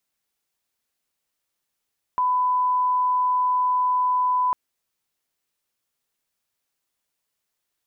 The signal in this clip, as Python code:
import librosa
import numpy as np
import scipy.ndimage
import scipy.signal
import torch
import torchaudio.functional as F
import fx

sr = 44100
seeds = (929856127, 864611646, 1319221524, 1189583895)

y = fx.lineup_tone(sr, length_s=2.35, level_db=-18.0)